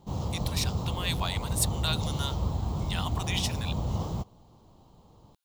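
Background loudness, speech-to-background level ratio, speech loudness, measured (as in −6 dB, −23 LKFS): −32.0 LKFS, −1.5 dB, −33.5 LKFS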